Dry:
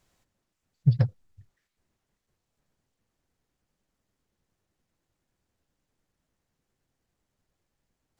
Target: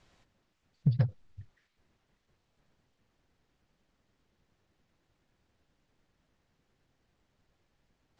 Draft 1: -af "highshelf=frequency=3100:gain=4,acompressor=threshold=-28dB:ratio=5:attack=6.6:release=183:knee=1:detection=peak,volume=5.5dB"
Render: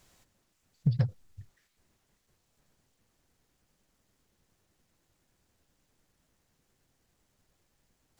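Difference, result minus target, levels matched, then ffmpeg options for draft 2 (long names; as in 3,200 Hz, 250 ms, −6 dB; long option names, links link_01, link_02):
4,000 Hz band +3.5 dB
-af "lowpass=4100,highshelf=frequency=3100:gain=4,acompressor=threshold=-28dB:ratio=5:attack=6.6:release=183:knee=1:detection=peak,volume=5.5dB"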